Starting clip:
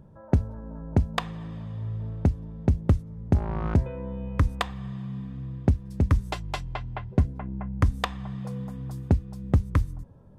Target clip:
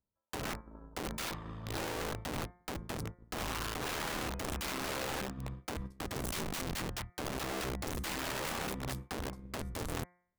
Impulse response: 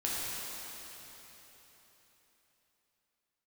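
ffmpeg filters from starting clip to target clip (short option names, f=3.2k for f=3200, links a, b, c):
-filter_complex "[0:a]agate=range=-44dB:threshold=-34dB:ratio=16:detection=peak,equalizer=f=150:w=2.8:g=-11.5,acrossover=split=320[a][b];[b]asoftclip=type=hard:threshold=-22dB[c];[a][c]amix=inputs=2:normalize=0,equalizer=f=1.2k:w=2.6:g=8,areverse,acompressor=threshold=-32dB:ratio=8,areverse,alimiter=level_in=8.5dB:limit=-24dB:level=0:latency=1:release=71,volume=-8.5dB,acontrast=23,aeval=exprs='(mod(56.2*val(0)+1,2)-1)/56.2':c=same,tremolo=f=81:d=0.462,bandreject=f=177.6:t=h:w=4,bandreject=f=355.2:t=h:w=4,bandreject=f=532.8:t=h:w=4,bandreject=f=710.4:t=h:w=4,bandreject=f=888:t=h:w=4,bandreject=f=1.0656k:t=h:w=4,bandreject=f=1.2432k:t=h:w=4,bandreject=f=1.4208k:t=h:w=4,bandreject=f=1.5984k:t=h:w=4,bandreject=f=1.776k:t=h:w=4,bandreject=f=1.9536k:t=h:w=4,bandreject=f=2.1312k:t=h:w=4,bandreject=f=2.3088k:t=h:w=4,volume=4.5dB"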